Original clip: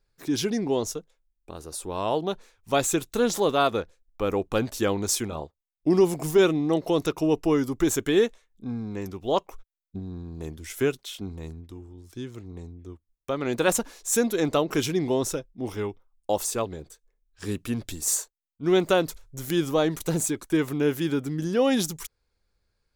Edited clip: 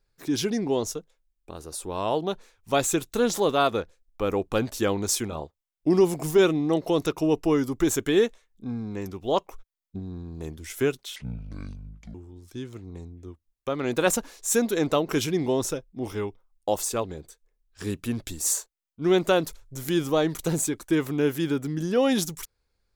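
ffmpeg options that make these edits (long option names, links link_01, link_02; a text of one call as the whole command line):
ffmpeg -i in.wav -filter_complex "[0:a]asplit=3[link_01][link_02][link_03];[link_01]atrim=end=11.164[link_04];[link_02]atrim=start=11.16:end=11.76,asetpts=PTS-STARTPTS,asetrate=26901,aresample=44100,atrim=end_sample=43377,asetpts=PTS-STARTPTS[link_05];[link_03]atrim=start=11.756[link_06];[link_04][link_05]acrossfade=duration=0.004:curve1=hsin:curve2=hsin[link_07];[link_07][link_06]acrossfade=duration=0.004:curve1=hsin:curve2=hsin" out.wav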